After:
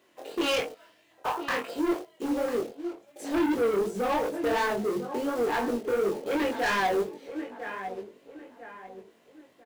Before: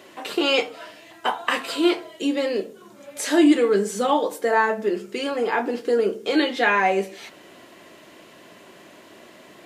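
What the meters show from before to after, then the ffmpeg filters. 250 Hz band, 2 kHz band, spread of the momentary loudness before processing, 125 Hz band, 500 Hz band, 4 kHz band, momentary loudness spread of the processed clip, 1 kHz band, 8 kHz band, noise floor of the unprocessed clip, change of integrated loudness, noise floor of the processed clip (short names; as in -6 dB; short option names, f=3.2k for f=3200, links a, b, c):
-7.5 dB, -7.5 dB, 12 LU, n/a, -5.5 dB, -9.0 dB, 17 LU, -6.0 dB, -8.5 dB, -48 dBFS, -7.0 dB, -63 dBFS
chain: -filter_complex "[0:a]afwtdn=0.0447,acrusher=bits=3:mode=log:mix=0:aa=0.000001,asplit=2[a][b];[b]adelay=998,lowpass=f=2.3k:p=1,volume=-15.5dB,asplit=2[c][d];[d]adelay=998,lowpass=f=2.3k:p=1,volume=0.38,asplit=2[e][f];[f]adelay=998,lowpass=f=2.3k:p=1,volume=0.38[g];[c][e][g]amix=inputs=3:normalize=0[h];[a][h]amix=inputs=2:normalize=0,asoftclip=type=tanh:threshold=-23dB,flanger=delay=20:depth=3.7:speed=2.8,volume=2.5dB"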